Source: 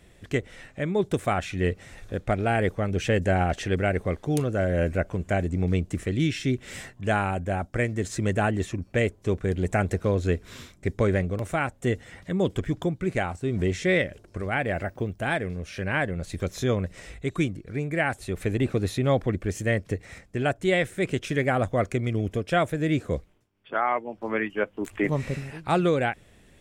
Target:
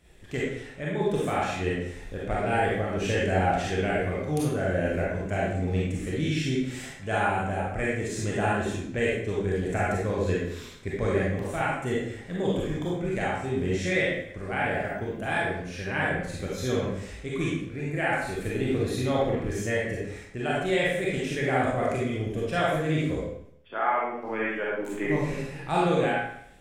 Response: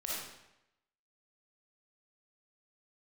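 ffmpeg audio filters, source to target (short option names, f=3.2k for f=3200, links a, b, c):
-filter_complex "[0:a]bandreject=f=70.23:t=h:w=4,bandreject=f=140.46:t=h:w=4,bandreject=f=210.69:t=h:w=4,bandreject=f=280.92:t=h:w=4,bandreject=f=351.15:t=h:w=4,bandreject=f=421.38:t=h:w=4,bandreject=f=491.61:t=h:w=4,bandreject=f=561.84:t=h:w=4,bandreject=f=632.07:t=h:w=4,bandreject=f=702.3:t=h:w=4,bandreject=f=772.53:t=h:w=4,bandreject=f=842.76:t=h:w=4,bandreject=f=912.99:t=h:w=4,bandreject=f=983.22:t=h:w=4,bandreject=f=1.05345k:t=h:w=4,bandreject=f=1.12368k:t=h:w=4,bandreject=f=1.19391k:t=h:w=4,bandreject=f=1.26414k:t=h:w=4,bandreject=f=1.33437k:t=h:w=4,bandreject=f=1.4046k:t=h:w=4,bandreject=f=1.47483k:t=h:w=4,bandreject=f=1.54506k:t=h:w=4,bandreject=f=1.61529k:t=h:w=4,bandreject=f=1.68552k:t=h:w=4,bandreject=f=1.75575k:t=h:w=4,bandreject=f=1.82598k:t=h:w=4,bandreject=f=1.89621k:t=h:w=4,bandreject=f=1.96644k:t=h:w=4,bandreject=f=2.03667k:t=h:w=4,bandreject=f=2.1069k:t=h:w=4,bandreject=f=2.17713k:t=h:w=4[a];[1:a]atrim=start_sample=2205,asetrate=57330,aresample=44100[b];[a][b]afir=irnorm=-1:irlink=0"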